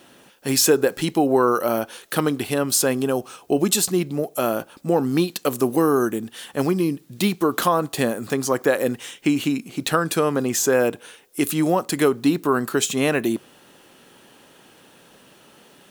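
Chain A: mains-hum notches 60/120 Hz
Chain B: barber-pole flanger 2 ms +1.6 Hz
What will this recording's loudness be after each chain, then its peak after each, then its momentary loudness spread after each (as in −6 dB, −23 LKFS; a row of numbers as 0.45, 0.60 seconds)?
−21.5, −24.5 LKFS; −4.0, −8.0 dBFS; 7, 8 LU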